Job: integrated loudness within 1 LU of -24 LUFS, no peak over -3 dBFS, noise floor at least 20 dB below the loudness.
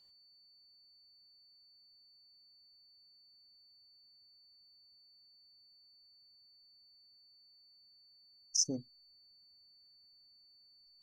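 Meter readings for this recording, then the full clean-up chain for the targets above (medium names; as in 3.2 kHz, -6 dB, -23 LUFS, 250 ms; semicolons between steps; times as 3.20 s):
steady tone 4.5 kHz; tone level -62 dBFS; loudness -34.0 LUFS; peak level -17.0 dBFS; loudness target -24.0 LUFS
-> band-stop 4.5 kHz, Q 30; trim +10 dB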